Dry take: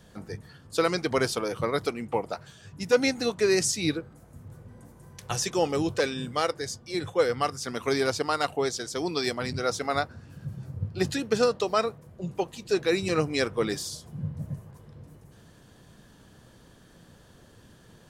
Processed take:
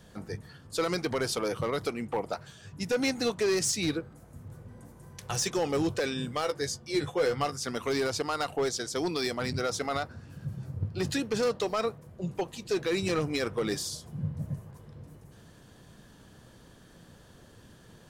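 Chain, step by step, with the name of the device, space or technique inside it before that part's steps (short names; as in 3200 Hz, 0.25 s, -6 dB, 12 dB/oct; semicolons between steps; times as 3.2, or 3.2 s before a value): limiter into clipper (limiter -17.5 dBFS, peak gain reduction 6.5 dB; hard clip -22.5 dBFS, distortion -17 dB); 6.42–7.54 doubler 14 ms -6.5 dB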